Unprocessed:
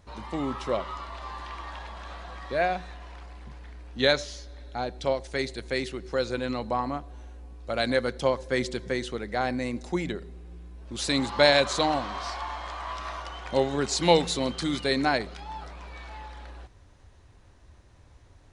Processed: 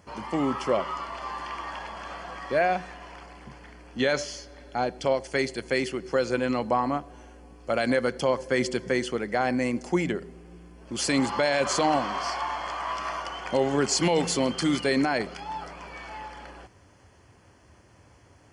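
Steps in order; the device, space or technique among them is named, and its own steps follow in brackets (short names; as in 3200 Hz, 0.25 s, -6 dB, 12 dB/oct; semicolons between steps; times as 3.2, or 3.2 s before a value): PA system with an anti-feedback notch (HPF 120 Hz 12 dB/oct; Butterworth band-stop 3800 Hz, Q 5; limiter -18 dBFS, peak gain reduction 11.5 dB); gain +4.5 dB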